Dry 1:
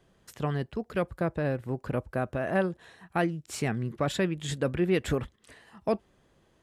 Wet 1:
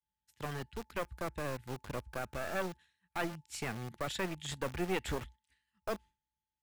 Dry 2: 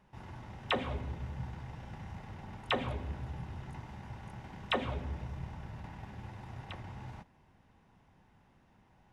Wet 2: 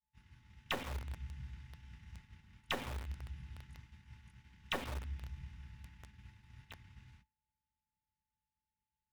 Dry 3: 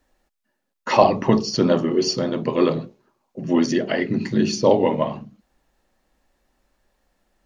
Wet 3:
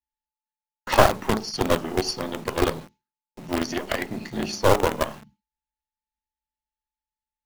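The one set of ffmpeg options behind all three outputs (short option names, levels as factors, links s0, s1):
-filter_complex "[0:a]aeval=exprs='val(0)+0.00398*sin(2*PI*870*n/s)':c=same,equalizer=f=61:t=o:w=0.63:g=13,agate=range=0.0224:threshold=0.0141:ratio=3:detection=peak,bass=f=250:g=-9,treble=f=4000:g=-2,aeval=exprs='0.891*(cos(1*acos(clip(val(0)/0.891,-1,1)))-cos(1*PI/2))+0.0794*(cos(2*acos(clip(val(0)/0.891,-1,1)))-cos(2*PI/2))+0.01*(cos(3*acos(clip(val(0)/0.891,-1,1)))-cos(3*PI/2))+0.355*(cos(4*acos(clip(val(0)/0.891,-1,1)))-cos(4*PI/2))+0.0282*(cos(6*acos(clip(val(0)/0.891,-1,1)))-cos(6*PI/2))':c=same,acrossover=split=240|1600[s0][s1][s2];[s1]acrusher=bits=4:dc=4:mix=0:aa=0.000001[s3];[s0][s3][s2]amix=inputs=3:normalize=0,volume=0.708"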